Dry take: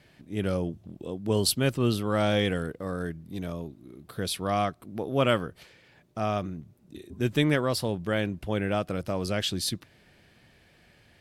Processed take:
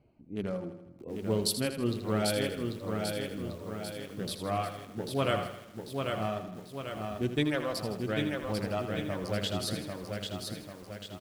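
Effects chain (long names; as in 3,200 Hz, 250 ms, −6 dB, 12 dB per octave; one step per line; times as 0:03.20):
adaptive Wiener filter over 25 samples
flanger 0.27 Hz, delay 2.6 ms, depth 9.3 ms, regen −61%
reverb reduction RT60 1.3 s
repeating echo 80 ms, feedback 56%, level −10 dB
feedback echo at a low word length 793 ms, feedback 55%, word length 9 bits, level −4 dB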